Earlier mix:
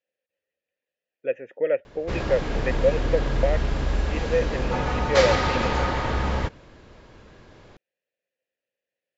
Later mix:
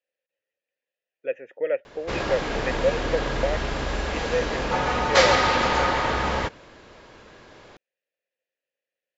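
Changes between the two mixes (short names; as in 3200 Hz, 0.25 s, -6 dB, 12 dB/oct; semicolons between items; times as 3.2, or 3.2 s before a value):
background +5.0 dB; master: add low shelf 240 Hz -12 dB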